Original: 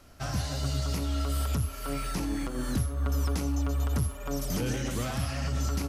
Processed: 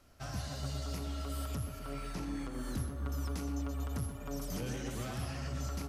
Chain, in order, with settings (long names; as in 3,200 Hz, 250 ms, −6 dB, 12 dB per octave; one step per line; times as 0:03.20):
0:01.78–0:02.52: high-shelf EQ 6,100 Hz → 12,000 Hz −8.5 dB
tape delay 123 ms, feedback 79%, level −6.5 dB, low-pass 2,200 Hz
level −8.5 dB